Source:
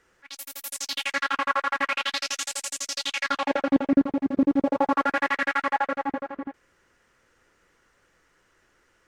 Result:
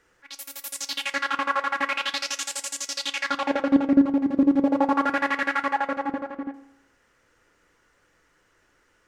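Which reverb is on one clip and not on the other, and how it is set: FDN reverb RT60 0.91 s, low-frequency decay 0.8×, high-frequency decay 0.45×, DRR 11 dB

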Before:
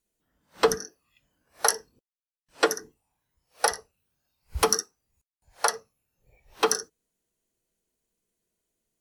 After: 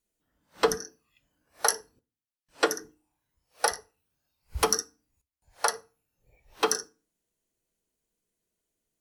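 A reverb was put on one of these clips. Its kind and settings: FDN reverb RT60 0.36 s, low-frequency decay 1.55×, high-frequency decay 0.8×, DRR 16 dB; gain -2 dB

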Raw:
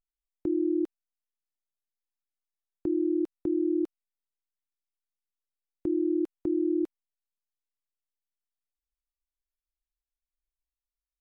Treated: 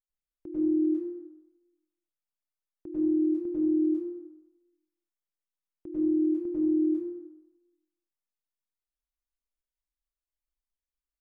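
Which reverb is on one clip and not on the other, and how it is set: plate-style reverb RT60 1 s, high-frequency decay 0.45×, pre-delay 85 ms, DRR -9 dB; gain -13 dB

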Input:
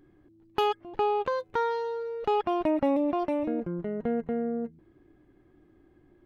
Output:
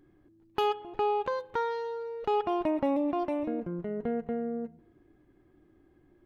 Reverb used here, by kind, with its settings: spring tank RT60 1 s, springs 31/57 ms, chirp 55 ms, DRR 17 dB; gain -2.5 dB

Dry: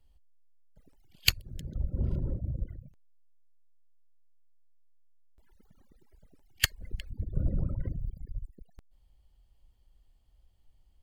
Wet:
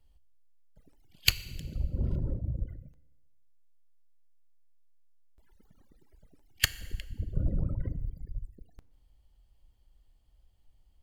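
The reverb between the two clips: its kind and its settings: FDN reverb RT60 1.2 s, low-frequency decay 0.85×, high-frequency decay 0.95×, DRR 15 dB

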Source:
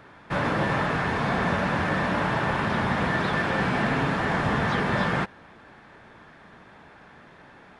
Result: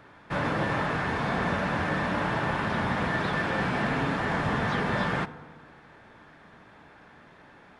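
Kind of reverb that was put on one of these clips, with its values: FDN reverb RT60 1.7 s, low-frequency decay 1.05×, high-frequency decay 0.4×, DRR 15 dB; gain -3 dB

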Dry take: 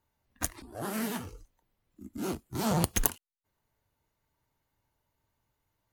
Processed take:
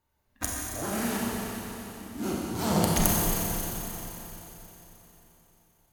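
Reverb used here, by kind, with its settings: Schroeder reverb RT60 3.8 s, combs from 30 ms, DRR -4.5 dB

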